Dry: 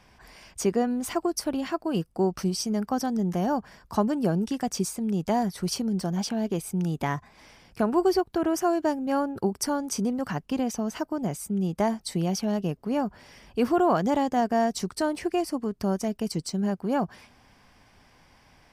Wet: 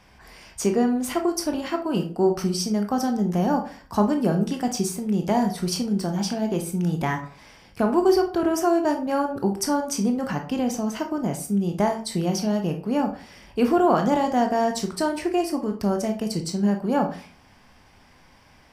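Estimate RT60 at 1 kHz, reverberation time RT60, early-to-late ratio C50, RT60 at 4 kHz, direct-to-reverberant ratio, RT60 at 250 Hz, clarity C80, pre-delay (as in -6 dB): 0.40 s, 0.40 s, 10.0 dB, 0.30 s, 3.5 dB, 0.50 s, 15.0 dB, 17 ms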